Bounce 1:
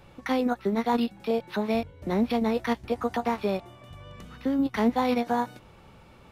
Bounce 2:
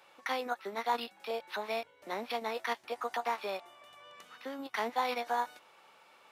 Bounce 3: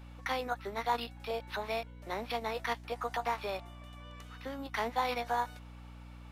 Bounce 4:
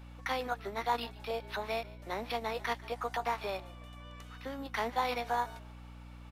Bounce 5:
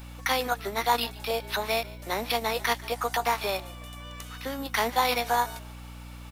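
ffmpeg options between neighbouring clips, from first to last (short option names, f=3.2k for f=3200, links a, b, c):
-af "highpass=730,volume=-2dB"
-af "aeval=exprs='val(0)+0.00398*(sin(2*PI*60*n/s)+sin(2*PI*2*60*n/s)/2+sin(2*PI*3*60*n/s)/3+sin(2*PI*4*60*n/s)/4+sin(2*PI*5*60*n/s)/5)':c=same"
-filter_complex "[0:a]asplit=3[a][b][c];[b]adelay=146,afreqshift=-47,volume=-20dB[d];[c]adelay=292,afreqshift=-94,volume=-30.5dB[e];[a][d][e]amix=inputs=3:normalize=0"
-af "crystalizer=i=2.5:c=0,volume=6.5dB"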